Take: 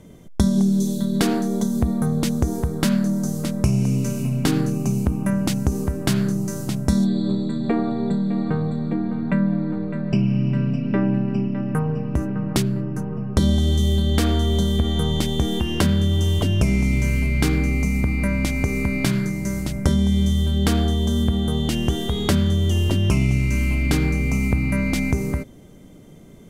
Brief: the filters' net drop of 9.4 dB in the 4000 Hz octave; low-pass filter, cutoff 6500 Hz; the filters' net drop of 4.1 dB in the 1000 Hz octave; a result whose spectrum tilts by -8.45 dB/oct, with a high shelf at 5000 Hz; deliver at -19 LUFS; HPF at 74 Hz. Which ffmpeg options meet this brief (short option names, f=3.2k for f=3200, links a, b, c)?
-af "highpass=74,lowpass=6.5k,equalizer=f=1k:t=o:g=-5,equalizer=f=4k:t=o:g=-9,highshelf=f=5k:g=-7.5,volume=4dB"